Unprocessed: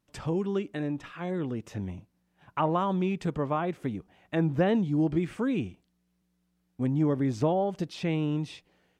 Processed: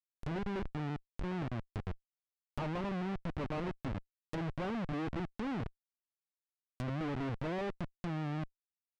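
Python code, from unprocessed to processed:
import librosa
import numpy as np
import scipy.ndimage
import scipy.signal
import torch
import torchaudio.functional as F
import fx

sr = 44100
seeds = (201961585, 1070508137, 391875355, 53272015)

y = fx.rotary(x, sr, hz=7.5)
y = fx.schmitt(y, sr, flips_db=-32.0)
y = fx.env_lowpass_down(y, sr, base_hz=2700.0, full_db=-31.5)
y = y * librosa.db_to_amplitude(-4.5)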